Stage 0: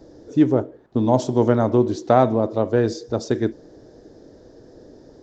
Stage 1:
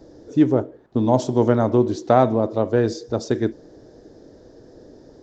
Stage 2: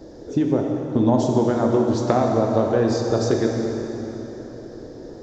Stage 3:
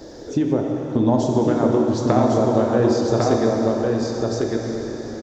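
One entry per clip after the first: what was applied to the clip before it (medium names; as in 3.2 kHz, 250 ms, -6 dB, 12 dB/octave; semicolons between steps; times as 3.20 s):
no audible change
compression, threshold -21 dBFS, peak gain reduction 11.5 dB; plate-style reverb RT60 3.8 s, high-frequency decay 0.8×, pre-delay 0 ms, DRR 0.5 dB; trim +4.5 dB
delay 1102 ms -3 dB; tape noise reduction on one side only encoder only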